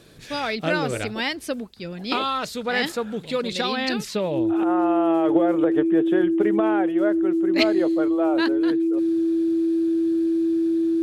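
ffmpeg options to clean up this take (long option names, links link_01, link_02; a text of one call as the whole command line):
ffmpeg -i in.wav -af "bandreject=frequency=330:width=30" out.wav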